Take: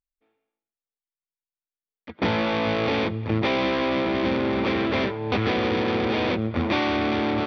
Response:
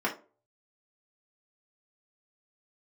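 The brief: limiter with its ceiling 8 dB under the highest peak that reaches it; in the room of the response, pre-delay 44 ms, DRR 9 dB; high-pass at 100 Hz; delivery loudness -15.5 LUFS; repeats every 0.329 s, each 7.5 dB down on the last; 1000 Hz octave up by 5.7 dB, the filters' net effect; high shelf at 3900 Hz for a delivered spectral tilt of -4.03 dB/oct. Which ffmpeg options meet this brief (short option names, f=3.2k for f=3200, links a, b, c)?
-filter_complex "[0:a]highpass=100,equalizer=f=1k:t=o:g=7.5,highshelf=f=3.9k:g=-4.5,alimiter=limit=-16dB:level=0:latency=1,aecho=1:1:329|658|987|1316|1645:0.422|0.177|0.0744|0.0312|0.0131,asplit=2[a][b];[1:a]atrim=start_sample=2205,adelay=44[c];[b][c]afir=irnorm=-1:irlink=0,volume=-18.5dB[d];[a][d]amix=inputs=2:normalize=0,volume=9.5dB"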